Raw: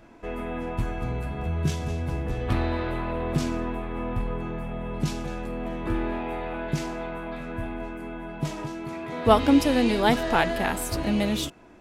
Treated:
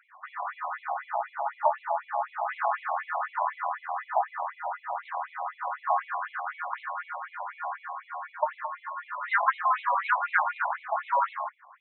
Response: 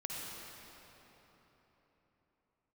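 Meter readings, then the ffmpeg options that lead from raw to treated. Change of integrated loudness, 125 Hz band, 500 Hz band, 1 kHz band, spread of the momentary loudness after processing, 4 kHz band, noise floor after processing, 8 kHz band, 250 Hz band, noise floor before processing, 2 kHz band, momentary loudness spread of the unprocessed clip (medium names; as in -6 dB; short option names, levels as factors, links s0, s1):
-3.0 dB, under -40 dB, -8.0 dB, +4.0 dB, 11 LU, under -15 dB, -58 dBFS, under -40 dB, under -40 dB, -38 dBFS, +2.0 dB, 13 LU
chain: -af "aeval=exprs='val(0)*sin(2*PI*760*n/s)':c=same,highshelf=f=2400:t=q:w=1.5:g=-13,afftfilt=real='re*between(b*sr/1024,780*pow(3000/780,0.5+0.5*sin(2*PI*4*pts/sr))/1.41,780*pow(3000/780,0.5+0.5*sin(2*PI*4*pts/sr))*1.41)':imag='im*between(b*sr/1024,780*pow(3000/780,0.5+0.5*sin(2*PI*4*pts/sr))/1.41,780*pow(3000/780,0.5+0.5*sin(2*PI*4*pts/sr))*1.41)':win_size=1024:overlap=0.75,volume=1.68"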